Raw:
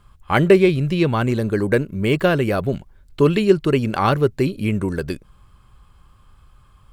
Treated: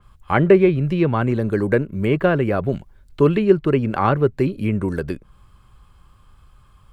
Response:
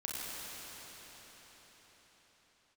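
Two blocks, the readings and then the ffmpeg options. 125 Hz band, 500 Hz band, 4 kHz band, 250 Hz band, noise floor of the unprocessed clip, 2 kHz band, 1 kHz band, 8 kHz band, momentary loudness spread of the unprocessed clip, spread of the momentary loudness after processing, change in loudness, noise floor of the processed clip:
0.0 dB, 0.0 dB, -8.0 dB, 0.0 dB, -53 dBFS, -2.0 dB, 0.0 dB, n/a, 10 LU, 10 LU, 0.0 dB, -53 dBFS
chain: -filter_complex "[0:a]acrossover=split=300|2500[a][b][c];[c]acompressor=threshold=-49dB:ratio=6[d];[a][b][d]amix=inputs=3:normalize=0,adynamicequalizer=threshold=0.0158:dfrequency=3900:dqfactor=0.7:tfrequency=3900:tqfactor=0.7:attack=5:release=100:ratio=0.375:range=2:mode=cutabove:tftype=highshelf"

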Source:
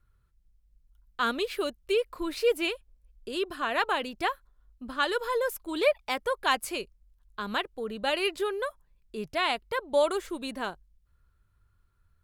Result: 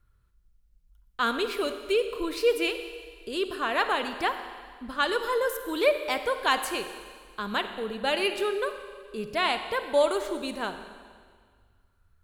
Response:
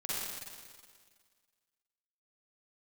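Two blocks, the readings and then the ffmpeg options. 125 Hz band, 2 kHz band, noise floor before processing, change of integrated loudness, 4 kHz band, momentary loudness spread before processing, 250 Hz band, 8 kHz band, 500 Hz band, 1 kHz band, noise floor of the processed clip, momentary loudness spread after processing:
n/a, +2.0 dB, -69 dBFS, +1.5 dB, +2.0 dB, 12 LU, +2.0 dB, +2.0 dB, +2.0 dB, +2.0 dB, -65 dBFS, 15 LU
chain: -filter_complex "[0:a]asplit=2[a][b];[1:a]atrim=start_sample=2205[c];[b][c]afir=irnorm=-1:irlink=0,volume=-10.5dB[d];[a][d]amix=inputs=2:normalize=0"

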